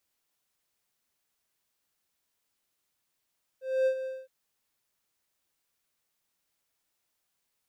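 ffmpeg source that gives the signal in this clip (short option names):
-f lavfi -i "aevalsrc='0.112*(1-4*abs(mod(524*t+0.25,1)-0.5))':d=0.666:s=44100,afade=t=in:d=0.252,afade=t=out:st=0.252:d=0.082:silence=0.282,afade=t=out:st=0.45:d=0.216"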